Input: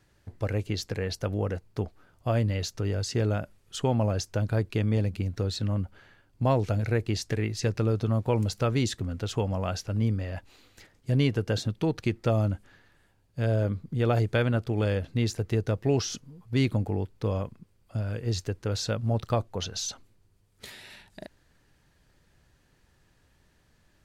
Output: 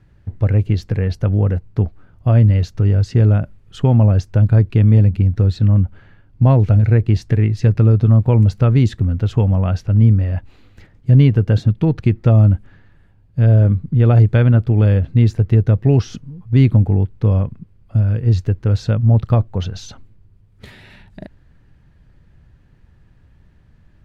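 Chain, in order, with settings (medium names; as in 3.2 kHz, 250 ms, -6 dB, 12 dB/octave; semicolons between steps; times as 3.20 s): tone controls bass +12 dB, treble -13 dB; trim +4.5 dB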